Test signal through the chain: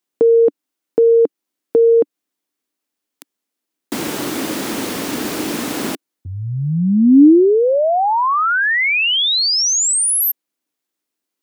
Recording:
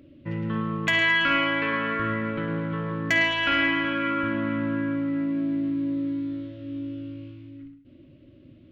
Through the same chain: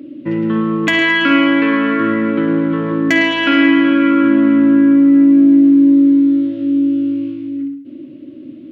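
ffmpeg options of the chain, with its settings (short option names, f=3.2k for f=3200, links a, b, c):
-filter_complex "[0:a]highpass=190,equalizer=f=290:t=o:w=0.83:g=13.5,asplit=2[a][b];[b]acompressor=threshold=-25dB:ratio=6,volume=-2.5dB[c];[a][c]amix=inputs=2:normalize=0,volume=4.5dB"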